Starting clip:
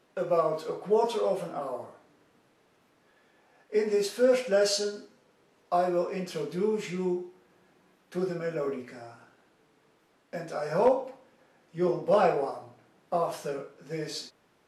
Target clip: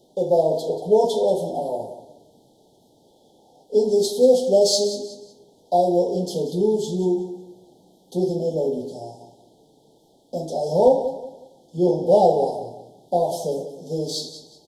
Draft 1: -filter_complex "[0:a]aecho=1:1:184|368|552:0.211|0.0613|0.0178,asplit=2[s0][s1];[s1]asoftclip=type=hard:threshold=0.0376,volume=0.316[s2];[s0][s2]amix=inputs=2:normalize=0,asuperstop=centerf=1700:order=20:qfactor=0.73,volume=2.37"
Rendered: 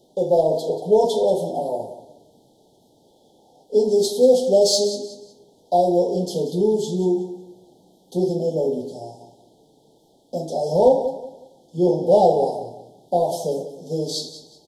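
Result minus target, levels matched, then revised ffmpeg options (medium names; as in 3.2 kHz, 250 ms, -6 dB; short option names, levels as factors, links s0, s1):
hard clipper: distortion -4 dB
-filter_complex "[0:a]aecho=1:1:184|368|552:0.211|0.0613|0.0178,asplit=2[s0][s1];[s1]asoftclip=type=hard:threshold=0.0112,volume=0.316[s2];[s0][s2]amix=inputs=2:normalize=0,asuperstop=centerf=1700:order=20:qfactor=0.73,volume=2.37"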